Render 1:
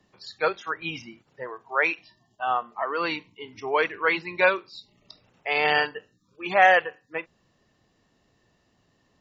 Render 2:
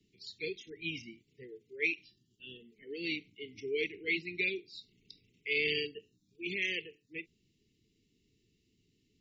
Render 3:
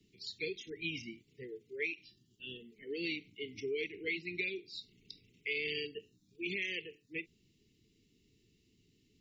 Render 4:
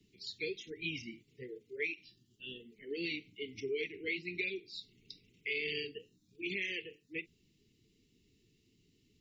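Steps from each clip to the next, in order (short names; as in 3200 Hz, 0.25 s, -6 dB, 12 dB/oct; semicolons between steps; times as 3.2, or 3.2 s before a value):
Chebyshev band-stop 440–2100 Hz, order 5; gain -5 dB
compressor 4:1, threshold -38 dBFS, peak gain reduction 10.5 dB; gain +3 dB
flange 1.1 Hz, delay 0.3 ms, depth 9.1 ms, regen -56%; gain +4 dB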